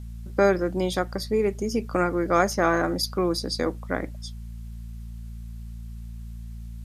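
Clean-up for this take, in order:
hum removal 56.8 Hz, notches 4
downward expander −29 dBFS, range −21 dB

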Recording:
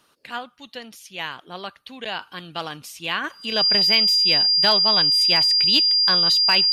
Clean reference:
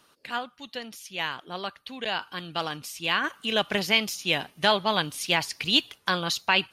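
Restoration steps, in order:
clipped peaks rebuilt −7.5 dBFS
notch filter 4,800 Hz, Q 30

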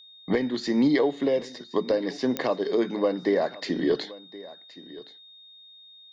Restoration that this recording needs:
click removal
notch filter 3,700 Hz, Q 30
echo removal 1,071 ms −19 dB

